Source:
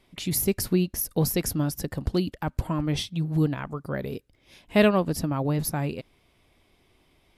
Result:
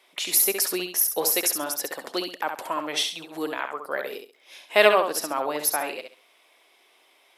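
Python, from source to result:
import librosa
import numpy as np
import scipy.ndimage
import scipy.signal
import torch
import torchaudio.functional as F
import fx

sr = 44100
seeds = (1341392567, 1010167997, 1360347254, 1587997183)

y = scipy.signal.sosfilt(scipy.signal.bessel(4, 650.0, 'highpass', norm='mag', fs=sr, output='sos'), x)
y = fx.notch(y, sr, hz=4700.0, q=17.0)
y = fx.echo_feedback(y, sr, ms=67, feedback_pct=24, wet_db=-6.5)
y = y * librosa.db_to_amplitude(7.0)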